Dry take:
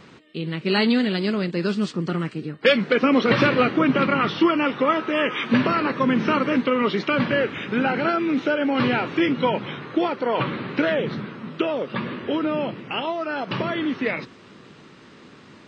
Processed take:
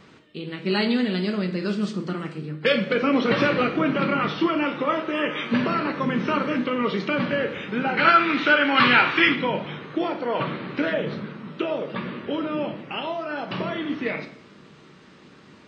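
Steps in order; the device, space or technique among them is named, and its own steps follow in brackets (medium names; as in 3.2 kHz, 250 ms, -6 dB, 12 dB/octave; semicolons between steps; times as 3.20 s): 7.97–9.35 s: high-order bell 2.2 kHz +12.5 dB 2.7 oct; bathroom (reverberation RT60 0.65 s, pre-delay 4 ms, DRR 5 dB); trim -4 dB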